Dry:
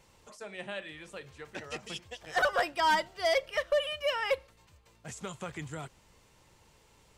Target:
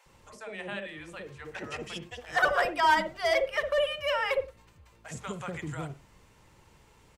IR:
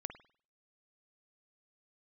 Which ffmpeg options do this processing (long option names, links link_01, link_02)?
-filter_complex "[0:a]acrossover=split=600[link_01][link_02];[link_01]adelay=60[link_03];[link_03][link_02]amix=inputs=2:normalize=0,asplit=2[link_04][link_05];[1:a]atrim=start_sample=2205,afade=type=out:start_time=0.17:duration=0.01,atrim=end_sample=7938,lowpass=2900[link_06];[link_05][link_06]afir=irnorm=-1:irlink=0,volume=0.5dB[link_07];[link_04][link_07]amix=inputs=2:normalize=0"